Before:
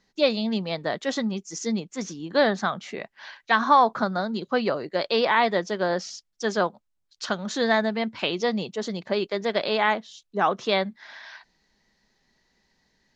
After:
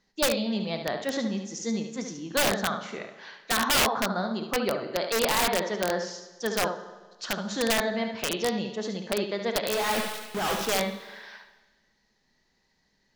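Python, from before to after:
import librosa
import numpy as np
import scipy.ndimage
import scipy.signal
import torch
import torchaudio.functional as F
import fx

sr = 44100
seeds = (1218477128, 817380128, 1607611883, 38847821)

p1 = fx.quant_companded(x, sr, bits=2, at=(9.74, 10.67))
p2 = p1 + fx.echo_single(p1, sr, ms=72, db=-7.5, dry=0)
p3 = fx.rev_schroeder(p2, sr, rt60_s=1.3, comb_ms=27, drr_db=10.0)
p4 = (np.mod(10.0 ** (13.0 / 20.0) * p3 + 1.0, 2.0) - 1.0) / 10.0 ** (13.0 / 20.0)
y = F.gain(torch.from_numpy(p4), -3.5).numpy()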